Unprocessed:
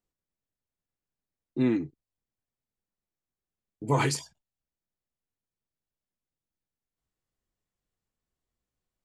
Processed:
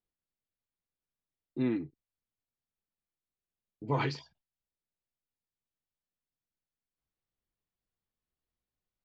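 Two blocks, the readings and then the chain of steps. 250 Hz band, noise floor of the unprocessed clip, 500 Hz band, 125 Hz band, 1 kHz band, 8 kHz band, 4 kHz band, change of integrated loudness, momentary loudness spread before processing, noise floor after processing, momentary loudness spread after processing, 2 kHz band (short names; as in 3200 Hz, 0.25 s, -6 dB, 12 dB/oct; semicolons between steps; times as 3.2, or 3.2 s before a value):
-5.5 dB, under -85 dBFS, -5.5 dB, -5.5 dB, -5.5 dB, -23.0 dB, -7.0 dB, -6.0 dB, 15 LU, under -85 dBFS, 15 LU, -5.5 dB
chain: steep low-pass 4800 Hz 36 dB/oct; gain -5.5 dB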